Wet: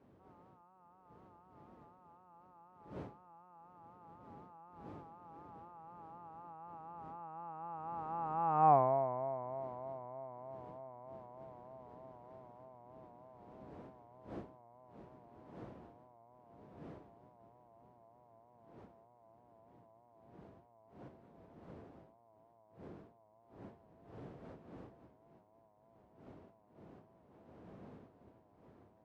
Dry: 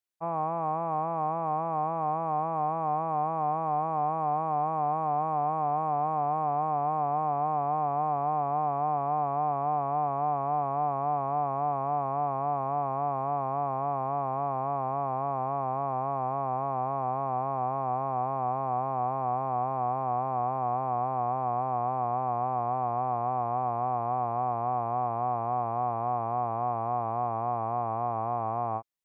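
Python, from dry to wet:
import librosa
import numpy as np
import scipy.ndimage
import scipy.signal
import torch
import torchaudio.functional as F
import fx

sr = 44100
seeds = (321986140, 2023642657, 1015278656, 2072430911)

y = fx.doppler_pass(x, sr, speed_mps=37, closest_m=3.9, pass_at_s=8.71)
y = fx.dmg_wind(y, sr, seeds[0], corner_hz=400.0, level_db=-61.0)
y = scipy.signal.sosfilt(scipy.signal.butter(2, 84.0, 'highpass', fs=sr, output='sos'), y)
y = F.gain(torch.from_numpy(y), 3.0).numpy()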